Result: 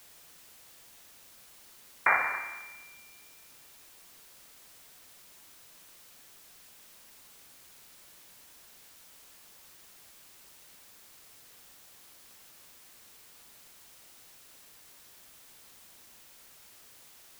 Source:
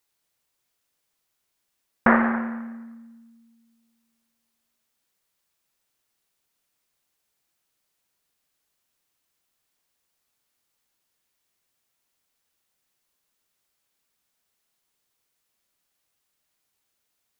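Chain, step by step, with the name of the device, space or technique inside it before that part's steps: scrambled radio voice (BPF 340–2600 Hz; inverted band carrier 2600 Hz; white noise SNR 12 dB); gain -5 dB

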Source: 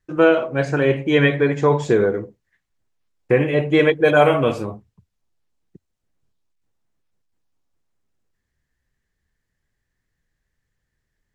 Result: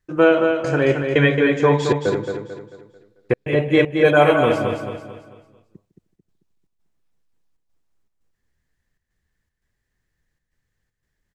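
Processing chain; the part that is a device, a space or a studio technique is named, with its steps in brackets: 1.75–3.33 bell 4000 Hz +10 dB 0.69 oct; feedback echo 0.154 s, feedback 40%, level -20 dB; trance gate with a delay (step gate "xxxx.xxx.xx" 117 bpm -60 dB; feedback echo 0.221 s, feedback 40%, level -6 dB)

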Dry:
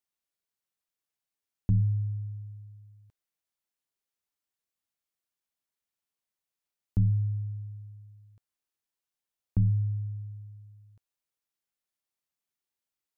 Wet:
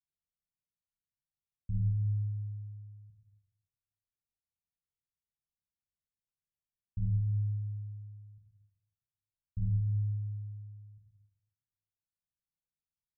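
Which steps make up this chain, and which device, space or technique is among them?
club heard from the street (limiter -28.5 dBFS, peak gain reduction 11 dB; LPF 170 Hz 24 dB/oct; reverb RT60 1.2 s, pre-delay 17 ms, DRR -3 dB)

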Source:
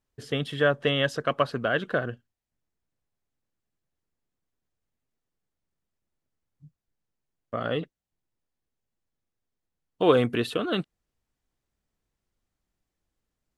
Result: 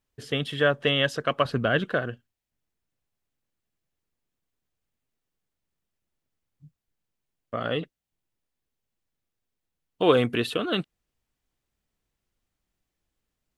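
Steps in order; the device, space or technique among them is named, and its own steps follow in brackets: 1.45–1.85 low shelf 230 Hz +10 dB; presence and air boost (bell 2800 Hz +3.5 dB 1.1 oct; high shelf 9400 Hz +3.5 dB)

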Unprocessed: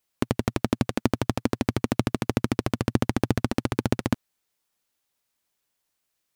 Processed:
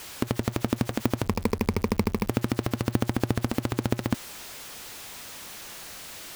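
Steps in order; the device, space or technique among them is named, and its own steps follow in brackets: 1.23–2.29 ripple EQ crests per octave 0.85, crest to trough 13 dB; early CD player with a faulty converter (zero-crossing step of -31 dBFS; clock jitter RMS 0.021 ms); gain -2.5 dB

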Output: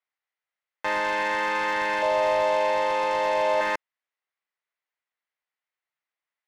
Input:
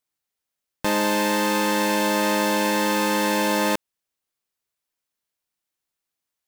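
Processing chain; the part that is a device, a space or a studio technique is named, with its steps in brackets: megaphone (BPF 660–2500 Hz; bell 2000 Hz +7 dB 0.25 oct; hard clip -18 dBFS, distortion -19 dB); 2.02–3.61 fifteen-band EQ 100 Hz +5 dB, 250 Hz -8 dB, 630 Hz +11 dB, 1600 Hz -9 dB, 16000 Hz -4 dB

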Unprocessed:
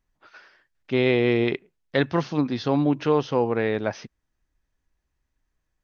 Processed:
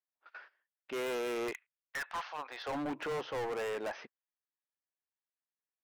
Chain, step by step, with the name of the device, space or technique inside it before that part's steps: 1.51–2.71 HPF 1400 Hz -> 480 Hz 24 dB/oct; walkie-talkie (BPF 560–2800 Hz; hard clip -33.5 dBFS, distortion -4 dB; gate -51 dBFS, range -18 dB); dynamic EQ 3700 Hz, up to -4 dB, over -56 dBFS, Q 1

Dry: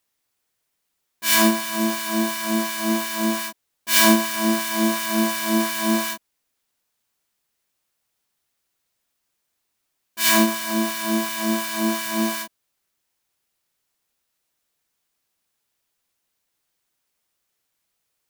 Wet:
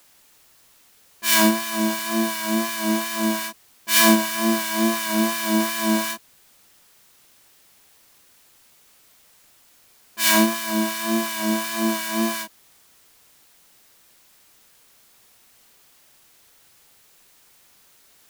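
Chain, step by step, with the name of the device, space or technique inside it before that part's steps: plain cassette with noise reduction switched in (mismatched tape noise reduction decoder only; wow and flutter 27 cents; white noise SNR 30 dB)

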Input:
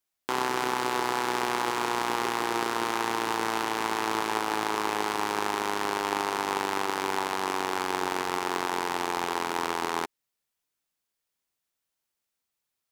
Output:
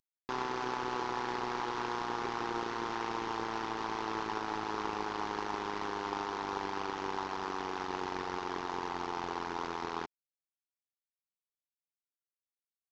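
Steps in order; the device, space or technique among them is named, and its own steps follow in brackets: early wireless headset (HPF 200 Hz 6 dB/oct; CVSD 32 kbps); gain -4 dB

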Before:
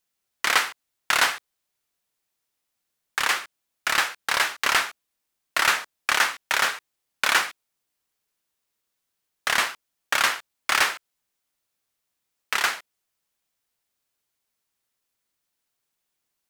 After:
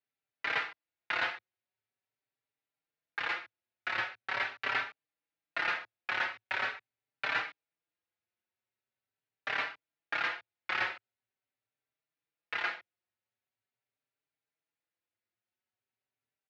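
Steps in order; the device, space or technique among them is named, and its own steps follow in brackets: barber-pole flanger into a guitar amplifier (endless flanger 4.7 ms +0.43 Hz; soft clip -16 dBFS, distortion -17 dB; speaker cabinet 94–3500 Hz, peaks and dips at 110 Hz +9 dB, 190 Hz -6 dB, 1100 Hz -6 dB, 3200 Hz -5 dB); gain -4.5 dB

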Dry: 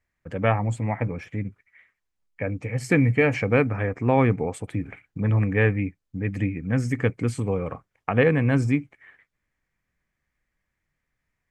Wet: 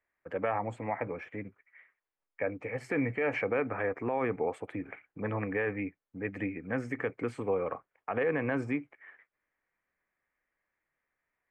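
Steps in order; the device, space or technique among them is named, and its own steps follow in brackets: DJ mixer with the lows and highs turned down (three-band isolator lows -18 dB, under 320 Hz, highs -19 dB, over 2500 Hz; limiter -21 dBFS, peak gain reduction 11.5 dB)

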